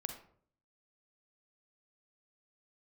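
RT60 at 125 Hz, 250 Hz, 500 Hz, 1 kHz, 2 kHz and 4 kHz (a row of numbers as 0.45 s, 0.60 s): 0.80 s, 0.70 s, 0.65 s, 0.50 s, 0.40 s, 0.30 s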